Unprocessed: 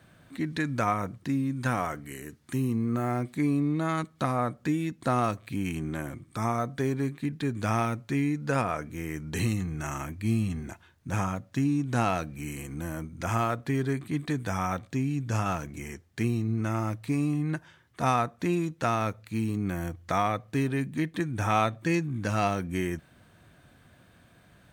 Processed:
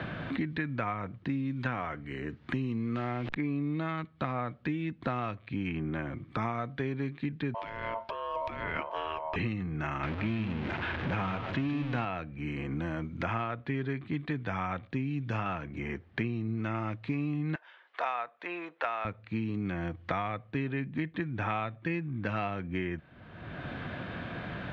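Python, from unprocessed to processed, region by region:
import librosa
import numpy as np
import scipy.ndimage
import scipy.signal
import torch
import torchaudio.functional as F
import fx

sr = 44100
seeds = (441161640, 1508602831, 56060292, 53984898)

y = fx.chain(x, sr, fx.delta_hold(step_db=-43.0),
    fx.sustainer(db_per_s=24.0), at=(2.96, 3.36))
y = fx.chain(y, sr, fx.ring_mod(carrier_hz=790.0),
    fx.notch(hz=480.0, q=9.9),
    fx.over_compress(threshold_db=-38.0, ratio=-1.0), at=(7.54, 9.36))
y = fx.chain(y, sr, fx.zero_step(step_db=-28.5),
    fx.echo_single(ms=151, db=-10.0), at=(10.03, 12.05))
y = fx.chain(y, sr, fx.highpass(hz=540.0, slope=24),
    fx.high_shelf(hz=7500.0, db=-7.0), at=(17.55, 19.05))
y = scipy.signal.sosfilt(scipy.signal.butter(4, 3400.0, 'lowpass', fs=sr, output='sos'), y)
y = fx.dynamic_eq(y, sr, hz=2500.0, q=0.93, threshold_db=-43.0, ratio=4.0, max_db=5)
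y = fx.band_squash(y, sr, depth_pct=100)
y = y * librosa.db_to_amplitude(-6.0)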